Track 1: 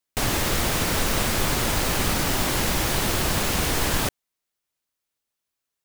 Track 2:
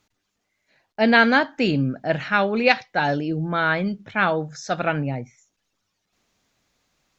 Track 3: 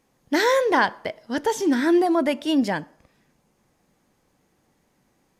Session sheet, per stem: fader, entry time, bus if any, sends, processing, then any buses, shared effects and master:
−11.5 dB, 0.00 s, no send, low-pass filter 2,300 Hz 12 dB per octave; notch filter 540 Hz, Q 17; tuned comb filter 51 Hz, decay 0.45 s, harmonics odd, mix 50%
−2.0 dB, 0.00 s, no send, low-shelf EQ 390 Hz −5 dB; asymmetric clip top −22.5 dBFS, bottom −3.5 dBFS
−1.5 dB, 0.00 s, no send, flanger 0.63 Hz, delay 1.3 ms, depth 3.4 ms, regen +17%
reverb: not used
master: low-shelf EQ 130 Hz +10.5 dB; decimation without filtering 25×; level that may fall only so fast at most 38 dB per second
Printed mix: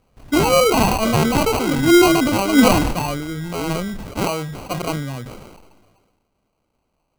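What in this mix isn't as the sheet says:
stem 1 −11.5 dB → −19.5 dB
stem 2: missing asymmetric clip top −22.5 dBFS, bottom −3.5 dBFS
stem 3 −1.5 dB → +5.5 dB

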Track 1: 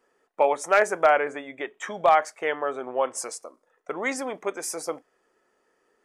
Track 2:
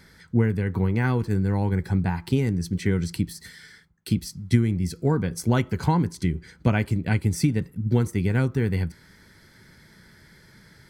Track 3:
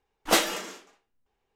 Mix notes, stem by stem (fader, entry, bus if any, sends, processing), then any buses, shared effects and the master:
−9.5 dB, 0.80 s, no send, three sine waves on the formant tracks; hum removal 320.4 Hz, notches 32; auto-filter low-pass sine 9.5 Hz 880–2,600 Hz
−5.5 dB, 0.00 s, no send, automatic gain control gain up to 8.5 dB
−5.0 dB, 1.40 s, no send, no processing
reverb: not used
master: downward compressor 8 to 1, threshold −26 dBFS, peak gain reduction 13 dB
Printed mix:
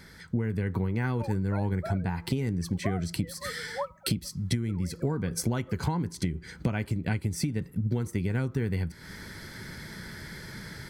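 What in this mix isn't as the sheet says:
stem 2 −5.5 dB → +2.0 dB
stem 3: muted

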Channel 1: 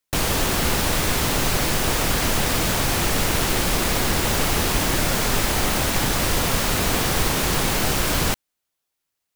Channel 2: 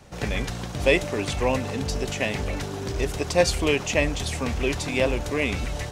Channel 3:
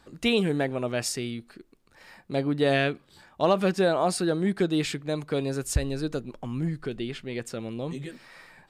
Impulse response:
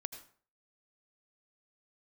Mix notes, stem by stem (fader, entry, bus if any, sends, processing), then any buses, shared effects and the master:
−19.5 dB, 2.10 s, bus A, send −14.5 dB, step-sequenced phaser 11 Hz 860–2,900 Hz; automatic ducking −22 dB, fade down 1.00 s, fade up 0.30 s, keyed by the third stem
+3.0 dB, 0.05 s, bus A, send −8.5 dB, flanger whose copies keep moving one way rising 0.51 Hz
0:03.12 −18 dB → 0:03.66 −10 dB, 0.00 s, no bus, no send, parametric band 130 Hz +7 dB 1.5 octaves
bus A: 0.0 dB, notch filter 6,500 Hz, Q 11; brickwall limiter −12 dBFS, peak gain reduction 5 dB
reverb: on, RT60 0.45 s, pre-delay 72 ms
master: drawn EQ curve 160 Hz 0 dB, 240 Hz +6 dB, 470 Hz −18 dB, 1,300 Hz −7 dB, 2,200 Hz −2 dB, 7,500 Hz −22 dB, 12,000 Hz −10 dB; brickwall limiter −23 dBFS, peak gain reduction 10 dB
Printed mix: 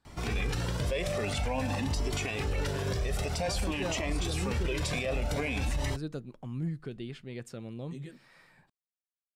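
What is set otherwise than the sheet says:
stem 1: muted
master: missing drawn EQ curve 160 Hz 0 dB, 240 Hz +6 dB, 470 Hz −18 dB, 1,300 Hz −7 dB, 2,200 Hz −2 dB, 7,500 Hz −22 dB, 12,000 Hz −10 dB

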